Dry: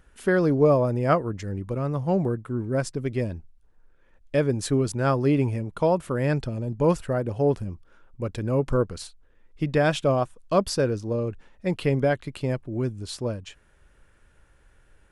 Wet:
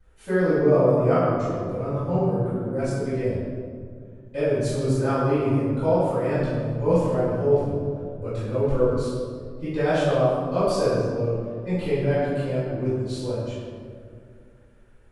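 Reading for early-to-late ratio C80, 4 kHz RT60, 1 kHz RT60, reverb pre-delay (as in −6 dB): 0.5 dB, 1.1 s, 1.9 s, 3 ms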